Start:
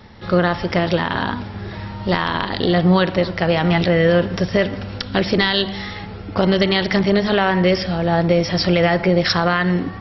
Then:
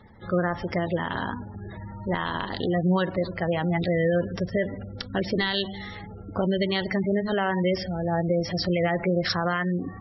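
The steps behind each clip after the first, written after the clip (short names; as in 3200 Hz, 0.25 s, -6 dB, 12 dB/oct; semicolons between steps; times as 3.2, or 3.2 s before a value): spectral gate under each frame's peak -20 dB strong; gain -8 dB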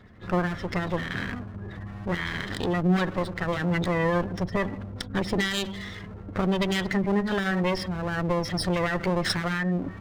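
minimum comb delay 0.56 ms; gain +1 dB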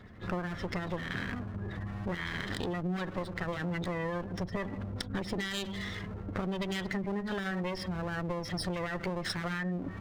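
compressor 5:1, threshold -32 dBFS, peak gain reduction 12.5 dB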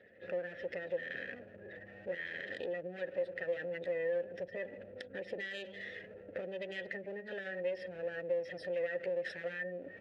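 vowel filter e; gain +6 dB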